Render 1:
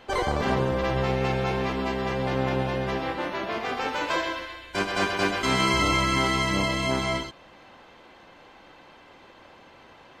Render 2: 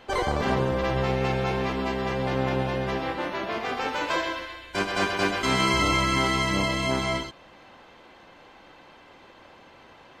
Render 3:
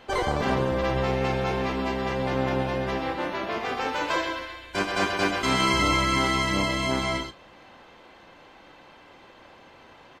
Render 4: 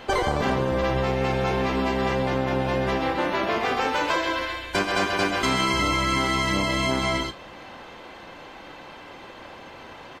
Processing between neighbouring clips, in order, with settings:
no processing that can be heard
double-tracking delay 34 ms −13.5 dB
downward compressor 5 to 1, threshold −29 dBFS, peak gain reduction 9.5 dB; level +8.5 dB; AAC 96 kbit/s 48,000 Hz

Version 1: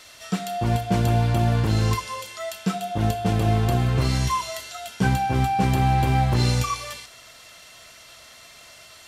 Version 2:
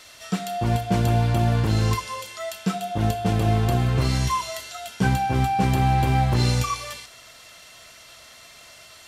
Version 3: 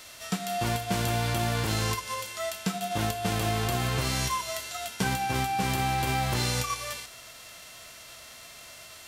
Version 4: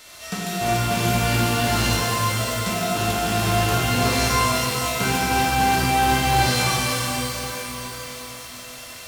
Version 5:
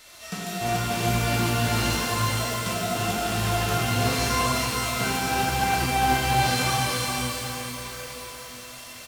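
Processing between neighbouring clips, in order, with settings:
no processing that can be heard
spectral envelope flattened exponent 0.6; downward compressor 2.5 to 1, threshold −28 dBFS, peak gain reduction 8.5 dB
reverb with rising layers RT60 3.9 s, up +12 semitones, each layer −8 dB, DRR −6.5 dB
flanger 0.88 Hz, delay 0.4 ms, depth 9.6 ms, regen +72%; single-tap delay 422 ms −6.5 dB

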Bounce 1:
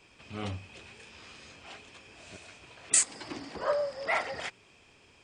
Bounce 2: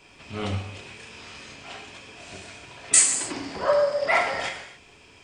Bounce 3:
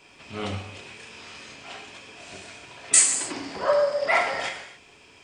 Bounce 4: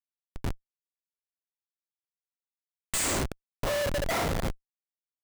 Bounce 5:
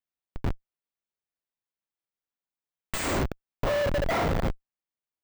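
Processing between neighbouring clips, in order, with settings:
reverb whose tail is shaped and stops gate 310 ms falling, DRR 1.5 dB; level +5.5 dB
low-shelf EQ 120 Hz −8 dB
comparator with hysteresis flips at −23 dBFS
parametric band 11,000 Hz −14 dB 2.1 octaves; level +3.5 dB

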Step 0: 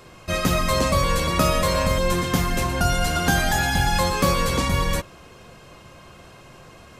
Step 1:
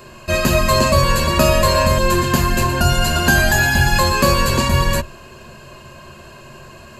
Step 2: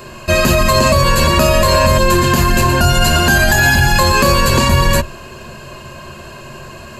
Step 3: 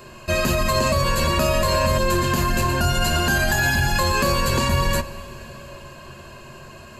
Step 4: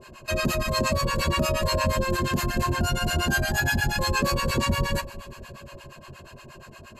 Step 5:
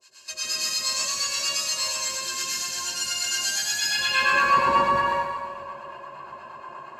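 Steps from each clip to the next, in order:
EQ curve with evenly spaced ripples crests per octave 1.4, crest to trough 10 dB; level +4.5 dB
boost into a limiter +7.5 dB; level −1 dB
convolution reverb RT60 4.9 s, pre-delay 33 ms, DRR 16 dB; level −8.5 dB
two-band tremolo in antiphase 8.5 Hz, depth 100%, crossover 660 Hz
band-pass filter sweep 5,900 Hz → 960 Hz, 0:03.63–0:04.53; dense smooth reverb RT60 1.3 s, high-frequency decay 1×, pre-delay 85 ms, DRR −7 dB; level +5.5 dB

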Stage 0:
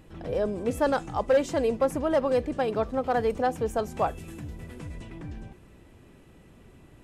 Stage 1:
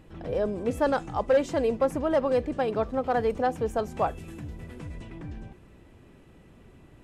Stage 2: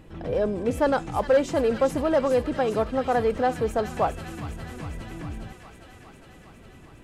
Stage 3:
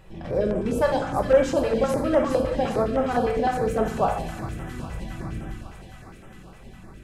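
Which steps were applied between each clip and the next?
high-shelf EQ 5,800 Hz −6 dB
in parallel at −10.5 dB: hard clipping −29 dBFS, distortion −5 dB; on the sum: delay with a high-pass on its return 408 ms, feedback 74%, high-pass 1,800 Hz, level −6 dB; level +1.5 dB
rectangular room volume 400 cubic metres, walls mixed, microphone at 1.1 metres; notch on a step sequencer 9.8 Hz 270–4,400 Hz

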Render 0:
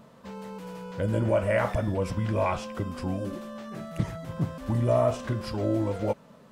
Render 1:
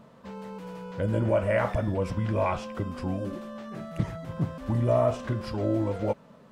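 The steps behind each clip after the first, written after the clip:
high-shelf EQ 5,000 Hz −7 dB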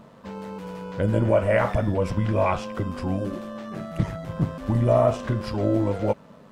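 amplitude modulation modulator 100 Hz, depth 25%
level +6 dB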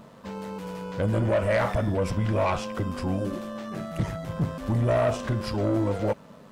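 high-shelf EQ 4,300 Hz +5.5 dB
soft clipping −17.5 dBFS, distortion −13 dB

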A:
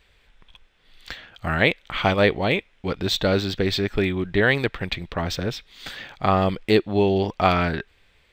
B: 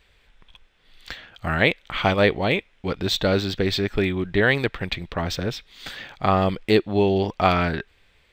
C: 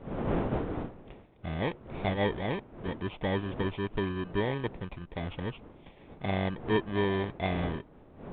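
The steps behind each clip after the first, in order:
no processing that can be heard
samples in bit-reversed order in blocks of 32 samples; wind on the microphone 430 Hz −32 dBFS; level −8 dB; G.726 40 kbit/s 8,000 Hz

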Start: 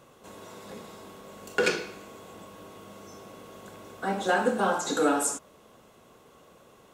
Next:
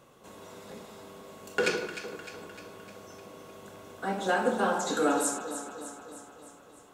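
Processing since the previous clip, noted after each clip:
delay that swaps between a low-pass and a high-pass 152 ms, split 1,300 Hz, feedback 76%, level −8 dB
level −2.5 dB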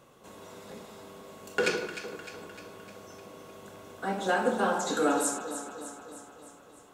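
no processing that can be heard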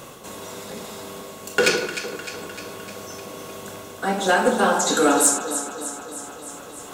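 high-shelf EQ 3,500 Hz +7.5 dB
reversed playback
upward compression, threshold −38 dBFS
reversed playback
hard clipping −16.5 dBFS, distortion −24 dB
level +8 dB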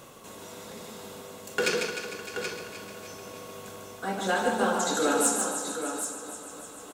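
multi-tap delay 148/365/779 ms −5/−19.5/−8 dB
level −8.5 dB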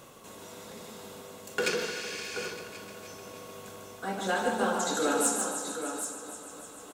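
healed spectral selection 0:01.80–0:02.43, 1,600–11,000 Hz
level −2.5 dB

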